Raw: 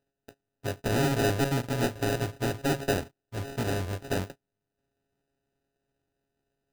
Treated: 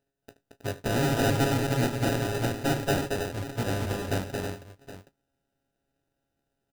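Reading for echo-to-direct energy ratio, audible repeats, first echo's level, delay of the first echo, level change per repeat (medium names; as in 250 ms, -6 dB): -2.0 dB, 4, -18.0 dB, 76 ms, no regular repeats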